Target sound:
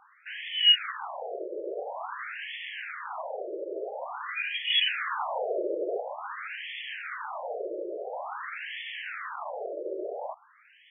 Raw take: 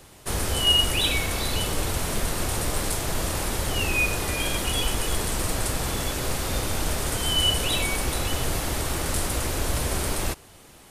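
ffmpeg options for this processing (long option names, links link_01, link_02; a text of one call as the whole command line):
ffmpeg -i in.wav -filter_complex "[0:a]asettb=1/sr,asplit=3[link_01][link_02][link_03];[link_01]atrim=end=0.594[link_04];[link_02]atrim=start=0.59:end=1.23,asetpts=PTS-STARTPTS,afade=type=in:duration=0.004:curve=qsin,afade=type=out:start_time=0.636:duration=0.004:curve=qsin,acrusher=bits=3:mix=0:aa=0.5[link_05];[link_03]atrim=start=1.226[link_06];[link_04][link_05]acrossfade=duration=0.004:curve1=hsin:curve2=qsin[link_07];[link_07][link_06]acrossfade=duration=0.004:curve1=qsin:curve2=hsin,asettb=1/sr,asplit=3[link_08][link_09][link_10];[link_08]atrim=end=4.704[link_11];[link_09]atrim=start=4.7:end=6,asetpts=PTS-STARTPTS,afade=type=in:duration=0.004:curve=qsin,afade=type=out:start_time=1.296:duration=0.004:curve=qsin,acontrast=51[link_12];[link_10]atrim=start=5.996[link_13];[link_11][link_12]acrossfade=duration=0.004:curve1=hsin:curve2=qsin[link_14];[link_14][link_13]acrossfade=duration=0.004:curve1=qsin:curve2=hsin,afftfilt=real='re*between(b*sr/1024,440*pow(2500/440,0.5+0.5*sin(2*PI*0.48*pts/sr))/1.41,440*pow(2500/440,0.5+0.5*sin(2*PI*0.48*pts/sr))*1.41)':imag='im*between(b*sr/1024,440*pow(2500/440,0.5+0.5*sin(2*PI*0.48*pts/sr))/1.41,440*pow(2500/440,0.5+0.5*sin(2*PI*0.48*pts/sr))*1.41)':win_size=1024:overlap=0.75,volume=1.5dB" out.wav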